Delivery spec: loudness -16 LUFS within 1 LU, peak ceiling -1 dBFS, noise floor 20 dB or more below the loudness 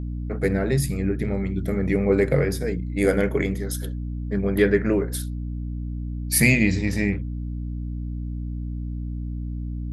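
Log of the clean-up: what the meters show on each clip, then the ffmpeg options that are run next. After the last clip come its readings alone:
hum 60 Hz; highest harmonic 300 Hz; hum level -27 dBFS; loudness -24.5 LUFS; peak level -5.5 dBFS; loudness target -16.0 LUFS
-> -af "bandreject=f=60:t=h:w=6,bandreject=f=120:t=h:w=6,bandreject=f=180:t=h:w=6,bandreject=f=240:t=h:w=6,bandreject=f=300:t=h:w=6"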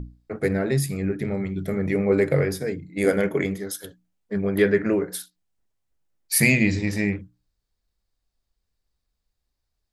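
hum not found; loudness -23.5 LUFS; peak level -6.0 dBFS; loudness target -16.0 LUFS
-> -af "volume=2.37,alimiter=limit=0.891:level=0:latency=1"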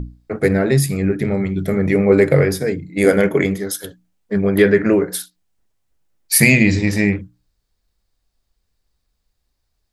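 loudness -16.5 LUFS; peak level -1.0 dBFS; noise floor -72 dBFS

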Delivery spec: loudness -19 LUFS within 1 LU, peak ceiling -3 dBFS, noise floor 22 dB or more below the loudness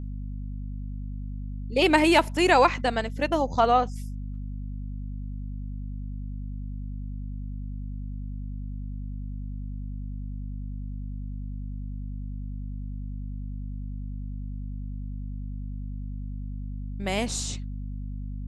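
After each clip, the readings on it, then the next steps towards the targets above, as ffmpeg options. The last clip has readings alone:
hum 50 Hz; highest harmonic 250 Hz; hum level -31 dBFS; loudness -30.0 LUFS; peak level -6.0 dBFS; loudness target -19.0 LUFS
-> -af "bandreject=f=50:t=h:w=6,bandreject=f=100:t=h:w=6,bandreject=f=150:t=h:w=6,bandreject=f=200:t=h:w=6,bandreject=f=250:t=h:w=6"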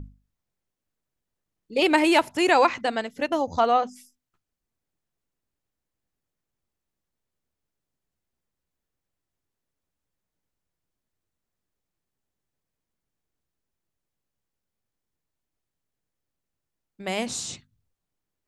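hum not found; loudness -23.0 LUFS; peak level -5.5 dBFS; loudness target -19.0 LUFS
-> -af "volume=1.58,alimiter=limit=0.708:level=0:latency=1"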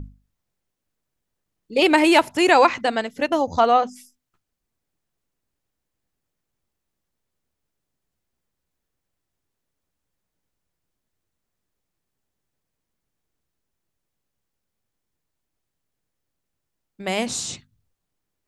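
loudness -19.0 LUFS; peak level -3.0 dBFS; noise floor -81 dBFS

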